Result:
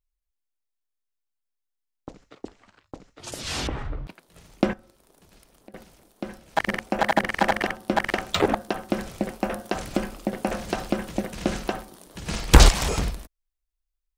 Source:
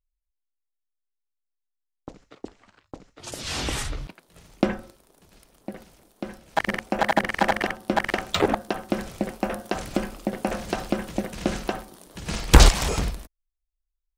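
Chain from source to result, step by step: 3.67–4.07 LPF 1300 Hz 12 dB/oct; 4.73–5.74 compressor 4:1, threshold -48 dBFS, peak gain reduction 16 dB

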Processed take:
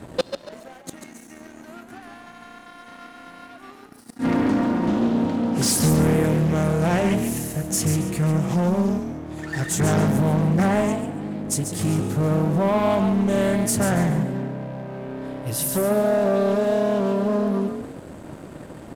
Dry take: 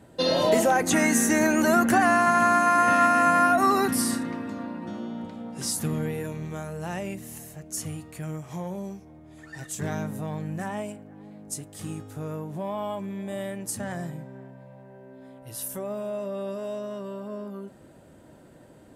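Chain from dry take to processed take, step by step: low shelf 500 Hz +4.5 dB; flipped gate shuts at -14 dBFS, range -32 dB; sample leveller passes 3; on a send: frequency-shifting echo 0.14 s, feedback 30%, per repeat +35 Hz, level -7.5 dB; on the sum: Doppler distortion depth 0.31 ms

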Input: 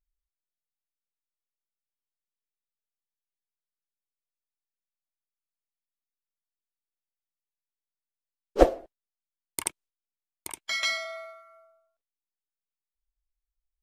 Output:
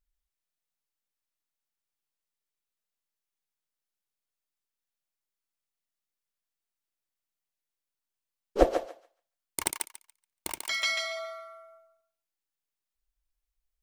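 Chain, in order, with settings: 9.61–10.62 half-waves squared off; in parallel at +0.5 dB: compressor, threshold -37 dBFS, peak gain reduction 24 dB; on the sum: thinning echo 0.142 s, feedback 20%, high-pass 770 Hz, level -4 dB; gain -4 dB

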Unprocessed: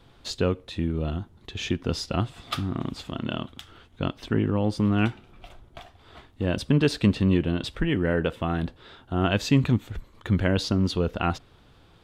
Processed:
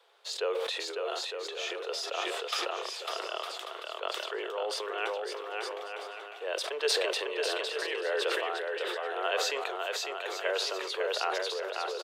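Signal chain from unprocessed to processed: steep high-pass 410 Hz 72 dB/oct; bouncing-ball echo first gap 0.55 s, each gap 0.65×, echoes 5; sustainer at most 22 dB/s; gain -4.5 dB

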